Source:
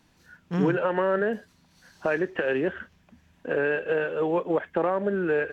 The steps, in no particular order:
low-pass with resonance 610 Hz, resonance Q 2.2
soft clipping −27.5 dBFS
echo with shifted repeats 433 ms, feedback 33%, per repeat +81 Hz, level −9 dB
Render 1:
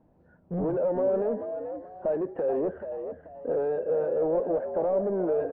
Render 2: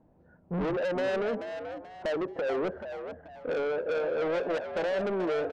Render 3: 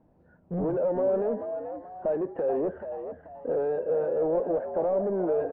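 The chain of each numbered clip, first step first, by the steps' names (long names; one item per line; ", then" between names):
soft clipping, then echo with shifted repeats, then low-pass with resonance
low-pass with resonance, then soft clipping, then echo with shifted repeats
soft clipping, then low-pass with resonance, then echo with shifted repeats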